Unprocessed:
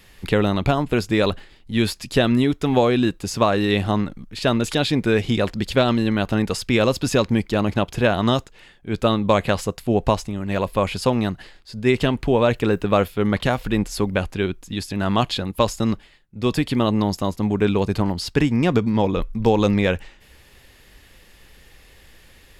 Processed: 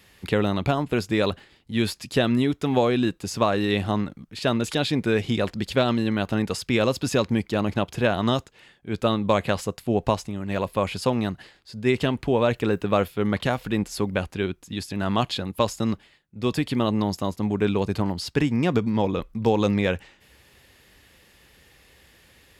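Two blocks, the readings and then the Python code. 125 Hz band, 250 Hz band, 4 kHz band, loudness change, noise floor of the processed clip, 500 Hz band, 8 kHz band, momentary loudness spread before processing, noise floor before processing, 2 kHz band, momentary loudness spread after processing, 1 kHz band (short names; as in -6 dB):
-4.0 dB, -3.5 dB, -3.5 dB, -3.5 dB, -58 dBFS, -3.5 dB, -3.5 dB, 6 LU, -51 dBFS, -3.5 dB, 6 LU, -3.5 dB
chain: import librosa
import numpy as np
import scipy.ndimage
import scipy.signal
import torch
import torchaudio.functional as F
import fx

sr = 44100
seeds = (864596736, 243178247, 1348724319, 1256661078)

y = scipy.signal.sosfilt(scipy.signal.butter(2, 67.0, 'highpass', fs=sr, output='sos'), x)
y = y * 10.0 ** (-3.5 / 20.0)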